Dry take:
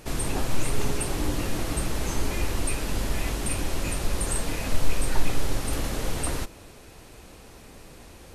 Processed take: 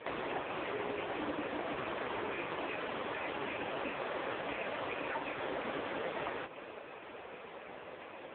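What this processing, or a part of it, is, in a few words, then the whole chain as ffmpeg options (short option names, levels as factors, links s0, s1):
voicemail: -af "highpass=430,lowpass=2700,acompressor=threshold=0.01:ratio=10,volume=2.99" -ar 8000 -c:a libopencore_amrnb -b:a 5150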